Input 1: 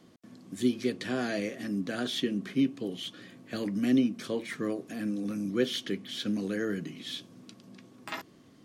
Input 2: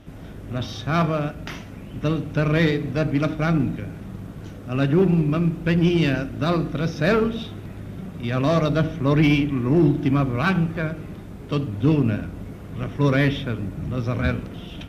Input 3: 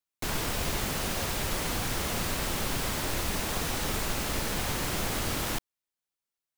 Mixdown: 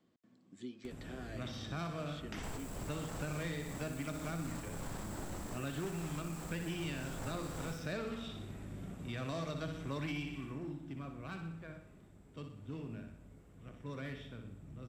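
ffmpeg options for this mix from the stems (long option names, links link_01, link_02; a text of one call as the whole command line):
ffmpeg -i stem1.wav -i stem2.wav -i stem3.wav -filter_complex "[0:a]volume=-16dB,asplit=2[link_01][link_02];[1:a]acompressor=mode=upward:threshold=-36dB:ratio=2.5,adelay=850,volume=-11dB,afade=type=out:start_time=10.24:duration=0.36:silence=0.237137,asplit=2[link_03][link_04];[link_04]volume=-8dB[link_05];[2:a]equalizer=frequency=2700:width=0.67:gain=-13.5,asoftclip=type=tanh:threshold=-30dB,adelay=2150,volume=3dB,asplit=2[link_06][link_07];[link_07]volume=-18dB[link_08];[link_02]apad=whole_len=384727[link_09];[link_06][link_09]sidechaincompress=threshold=-53dB:ratio=8:attack=16:release=325[link_10];[link_01][link_10]amix=inputs=2:normalize=0,lowpass=4200,alimiter=level_in=9.5dB:limit=-24dB:level=0:latency=1:release=95,volume=-9.5dB,volume=0dB[link_11];[link_05][link_08]amix=inputs=2:normalize=0,aecho=0:1:61|122|183|244|305|366|427|488:1|0.52|0.27|0.141|0.0731|0.038|0.0198|0.0103[link_12];[link_03][link_11][link_12]amix=inputs=3:normalize=0,equalizer=frequency=7700:width=5.5:gain=14.5,acrossover=split=780|3200[link_13][link_14][link_15];[link_13]acompressor=threshold=-40dB:ratio=4[link_16];[link_14]acompressor=threshold=-47dB:ratio=4[link_17];[link_15]acompressor=threshold=-52dB:ratio=4[link_18];[link_16][link_17][link_18]amix=inputs=3:normalize=0" out.wav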